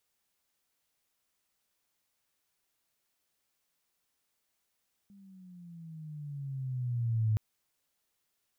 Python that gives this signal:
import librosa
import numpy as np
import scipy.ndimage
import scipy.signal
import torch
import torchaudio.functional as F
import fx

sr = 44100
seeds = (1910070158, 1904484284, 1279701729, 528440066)

y = fx.riser_tone(sr, length_s=2.27, level_db=-24, wave='sine', hz=202.0, rise_st=-11.0, swell_db=29.0)